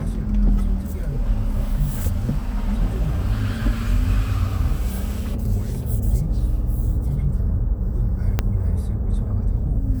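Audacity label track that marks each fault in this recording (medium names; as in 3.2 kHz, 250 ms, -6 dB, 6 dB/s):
8.390000	8.390000	pop -6 dBFS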